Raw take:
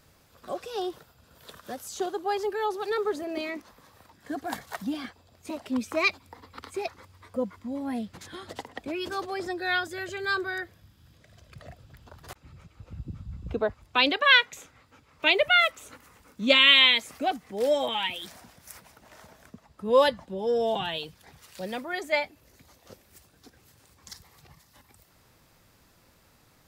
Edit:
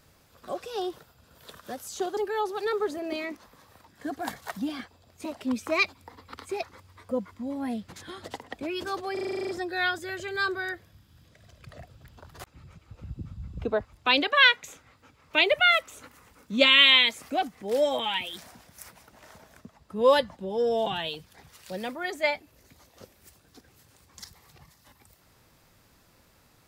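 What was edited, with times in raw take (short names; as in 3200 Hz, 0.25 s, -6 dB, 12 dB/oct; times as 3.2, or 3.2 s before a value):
2.17–2.42 cut
9.38 stutter 0.04 s, 10 plays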